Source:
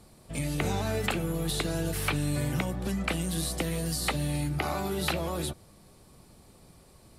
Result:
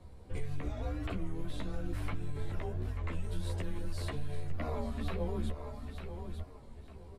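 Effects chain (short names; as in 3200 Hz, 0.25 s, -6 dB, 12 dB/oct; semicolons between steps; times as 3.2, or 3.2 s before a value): LPF 1000 Hz 6 dB/oct; limiter -27 dBFS, peak gain reduction 8 dB; feedback echo 0.899 s, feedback 24%, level -11 dB; frequency shift -150 Hz; compressor, threshold -36 dBFS, peak gain reduction 7 dB; chorus voices 6, 0.83 Hz, delay 13 ms, depth 2.5 ms; record warp 33 1/3 rpm, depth 100 cents; gain +5.5 dB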